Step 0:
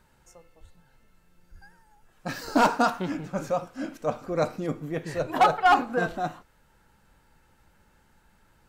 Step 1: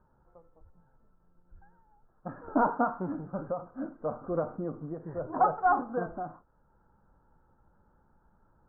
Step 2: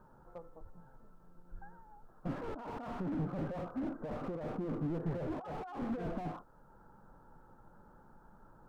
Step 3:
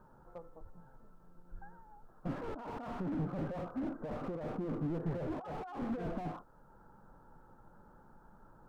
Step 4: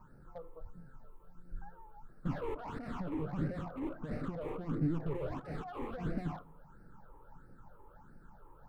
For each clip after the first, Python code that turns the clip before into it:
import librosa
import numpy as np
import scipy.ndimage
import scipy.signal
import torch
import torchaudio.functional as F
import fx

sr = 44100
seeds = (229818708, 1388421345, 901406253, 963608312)

y1 = scipy.signal.sosfilt(scipy.signal.butter(8, 1400.0, 'lowpass', fs=sr, output='sos'), x)
y1 = fx.rider(y1, sr, range_db=4, speed_s=2.0)
y1 = fx.end_taper(y1, sr, db_per_s=170.0)
y1 = y1 * 10.0 ** (-5.0 / 20.0)
y2 = fx.over_compress(y1, sr, threshold_db=-38.0, ratio=-1.0)
y2 = fx.peak_eq(y2, sr, hz=64.0, db=-11.5, octaves=0.92)
y2 = fx.slew_limit(y2, sr, full_power_hz=4.9)
y2 = y2 * 10.0 ** (2.0 / 20.0)
y3 = y2
y4 = fx.phaser_stages(y3, sr, stages=8, low_hz=190.0, high_hz=1000.0, hz=1.5, feedback_pct=25)
y4 = fx.room_shoebox(y4, sr, seeds[0], volume_m3=2000.0, walls='furnished', distance_m=0.33)
y4 = y4 * 10.0 ** (4.0 / 20.0)